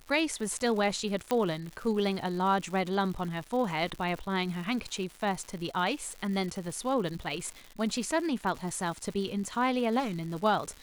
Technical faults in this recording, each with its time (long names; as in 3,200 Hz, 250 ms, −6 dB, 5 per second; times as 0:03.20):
surface crackle 210 per second −37 dBFS
0:01.31: click −14 dBFS
0:09.99–0:10.37: clipping −29 dBFS